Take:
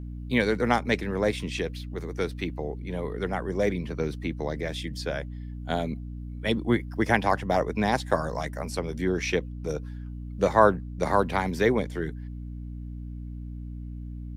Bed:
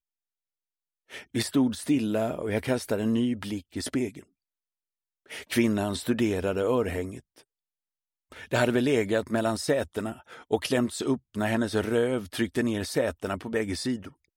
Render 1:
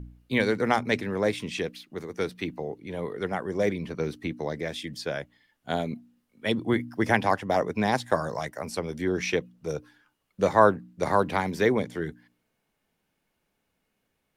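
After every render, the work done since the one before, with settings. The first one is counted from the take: de-hum 60 Hz, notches 5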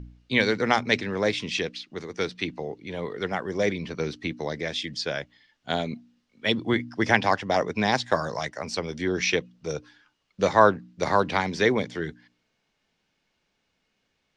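LPF 5900 Hz 24 dB/oct; high shelf 2400 Hz +10.5 dB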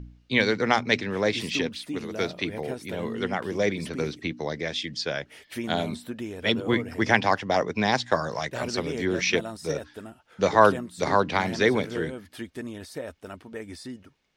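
add bed -9.5 dB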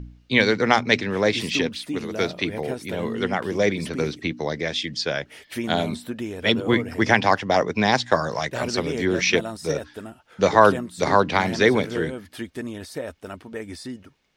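gain +4 dB; limiter -1 dBFS, peak gain reduction 2.5 dB

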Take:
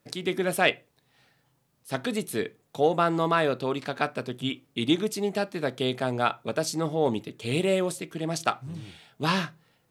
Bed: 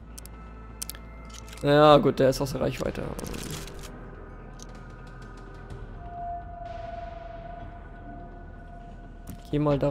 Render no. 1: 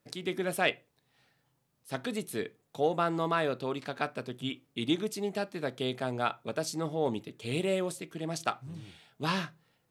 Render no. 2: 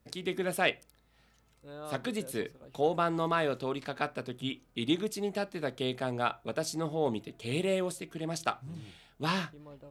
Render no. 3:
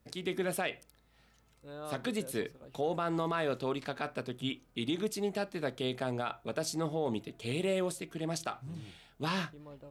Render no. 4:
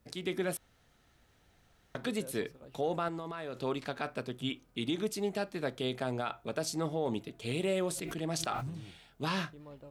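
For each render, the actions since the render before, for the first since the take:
gain -5.5 dB
add bed -26.5 dB
limiter -22.5 dBFS, peak gain reduction 9.5 dB
0.57–1.95 room tone; 3.08–3.61 compressor, threshold -36 dBFS; 7.88–8.7 sustainer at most 26 dB/s

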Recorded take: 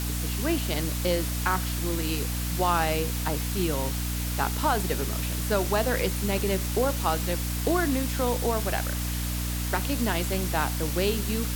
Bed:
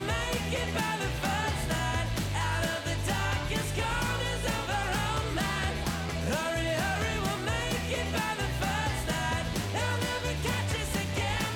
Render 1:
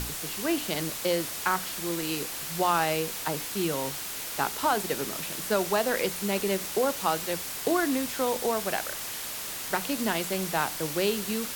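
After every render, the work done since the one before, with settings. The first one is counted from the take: notches 60/120/180/240/300 Hz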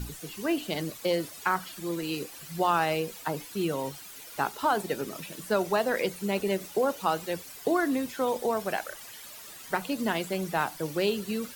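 denoiser 13 dB, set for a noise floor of -36 dBFS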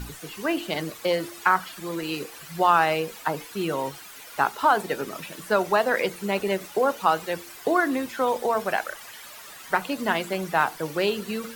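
bell 1300 Hz +7.5 dB 2.5 oct; de-hum 114.6 Hz, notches 4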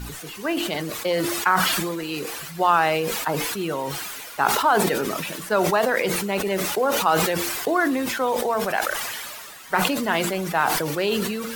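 sustainer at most 25 dB/s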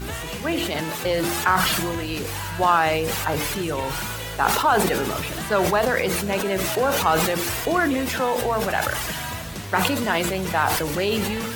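add bed -2 dB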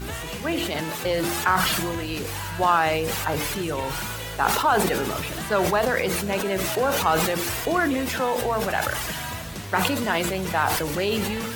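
gain -1.5 dB

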